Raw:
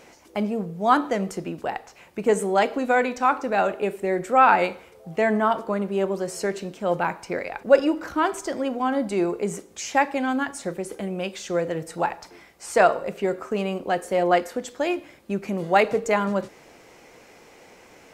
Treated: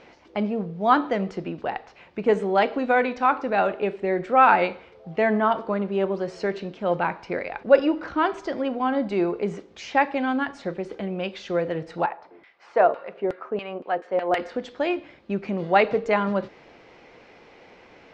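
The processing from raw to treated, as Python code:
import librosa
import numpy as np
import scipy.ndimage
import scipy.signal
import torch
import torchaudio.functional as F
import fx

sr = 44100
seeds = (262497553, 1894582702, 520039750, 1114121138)

y = scipy.signal.sosfilt(scipy.signal.butter(4, 4400.0, 'lowpass', fs=sr, output='sos'), x)
y = fx.filter_lfo_bandpass(y, sr, shape='saw_down', hz=fx.line((12.05, 1.2), (14.38, 7.2)), low_hz=360.0, high_hz=2700.0, q=0.85, at=(12.05, 14.38), fade=0.02)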